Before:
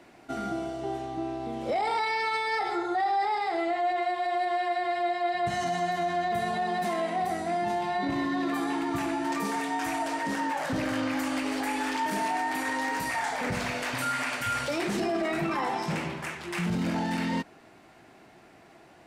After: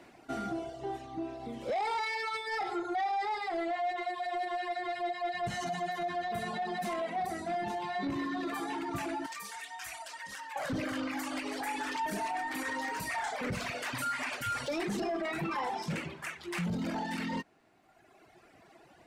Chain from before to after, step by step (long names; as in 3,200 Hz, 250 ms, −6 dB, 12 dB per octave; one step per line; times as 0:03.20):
reverb reduction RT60 1.8 s
0:09.26–0:10.56: guitar amp tone stack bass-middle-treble 10-0-10
soft clipping −26 dBFS, distortion −18 dB
level −1 dB